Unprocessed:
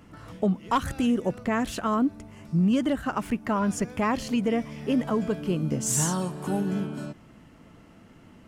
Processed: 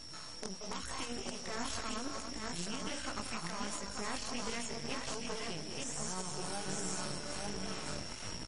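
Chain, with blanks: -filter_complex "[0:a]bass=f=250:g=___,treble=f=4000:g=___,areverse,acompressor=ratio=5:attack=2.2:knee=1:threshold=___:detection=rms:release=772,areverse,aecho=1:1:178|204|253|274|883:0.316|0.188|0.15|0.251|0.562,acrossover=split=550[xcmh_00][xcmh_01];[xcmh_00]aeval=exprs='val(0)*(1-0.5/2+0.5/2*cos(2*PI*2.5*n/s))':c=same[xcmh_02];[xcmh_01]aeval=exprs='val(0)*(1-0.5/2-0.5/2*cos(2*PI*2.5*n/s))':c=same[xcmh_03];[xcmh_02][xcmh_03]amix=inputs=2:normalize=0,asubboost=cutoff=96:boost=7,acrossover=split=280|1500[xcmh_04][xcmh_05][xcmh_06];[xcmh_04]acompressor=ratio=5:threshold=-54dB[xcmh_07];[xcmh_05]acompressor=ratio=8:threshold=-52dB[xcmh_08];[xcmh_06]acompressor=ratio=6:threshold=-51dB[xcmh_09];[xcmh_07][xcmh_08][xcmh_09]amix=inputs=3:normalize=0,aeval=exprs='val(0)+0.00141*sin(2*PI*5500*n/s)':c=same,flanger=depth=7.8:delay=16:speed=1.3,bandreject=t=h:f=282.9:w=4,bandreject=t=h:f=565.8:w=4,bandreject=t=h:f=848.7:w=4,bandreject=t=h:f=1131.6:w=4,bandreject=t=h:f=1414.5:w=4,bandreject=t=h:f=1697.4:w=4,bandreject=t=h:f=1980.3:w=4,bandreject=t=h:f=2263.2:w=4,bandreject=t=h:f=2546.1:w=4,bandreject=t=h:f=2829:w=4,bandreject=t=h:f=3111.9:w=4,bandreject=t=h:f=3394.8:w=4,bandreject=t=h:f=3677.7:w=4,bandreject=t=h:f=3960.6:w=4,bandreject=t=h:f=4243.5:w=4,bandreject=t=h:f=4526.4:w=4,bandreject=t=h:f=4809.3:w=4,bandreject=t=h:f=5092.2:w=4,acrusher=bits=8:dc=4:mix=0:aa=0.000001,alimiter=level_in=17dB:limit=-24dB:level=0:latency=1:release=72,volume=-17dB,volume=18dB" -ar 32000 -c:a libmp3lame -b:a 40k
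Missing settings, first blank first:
-12, 8, -38dB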